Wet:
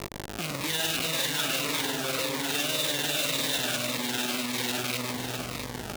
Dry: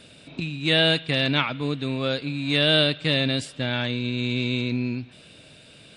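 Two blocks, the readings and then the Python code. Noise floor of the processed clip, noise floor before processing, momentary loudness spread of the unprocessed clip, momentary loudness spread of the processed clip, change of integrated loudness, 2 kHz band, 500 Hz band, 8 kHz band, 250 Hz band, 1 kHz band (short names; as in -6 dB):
-38 dBFS, -50 dBFS, 11 LU, 7 LU, -4.5 dB, -4.5 dB, -7.5 dB, +16.5 dB, -8.5 dB, 0.0 dB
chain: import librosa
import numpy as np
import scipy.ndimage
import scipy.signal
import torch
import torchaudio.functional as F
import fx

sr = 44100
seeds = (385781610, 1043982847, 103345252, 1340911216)

p1 = fx.reverse_delay_fb(x, sr, ms=199, feedback_pct=50, wet_db=0.0)
p2 = fx.add_hum(p1, sr, base_hz=50, snr_db=19)
p3 = fx.schmitt(p2, sr, flips_db=-34.5)
p4 = p3 + fx.echo_single(p3, sr, ms=667, db=-6.5, dry=0)
p5 = p4 * (1.0 - 0.57 / 2.0 + 0.57 / 2.0 * np.cos(2.0 * np.pi * 20.0 * (np.arange(len(p4)) / sr)))
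p6 = fx.level_steps(p5, sr, step_db=15)
p7 = fx.highpass(p6, sr, hz=600.0, slope=6)
p8 = fx.notch_cascade(p7, sr, direction='falling', hz=1.8)
y = F.gain(torch.from_numpy(p8), 5.5).numpy()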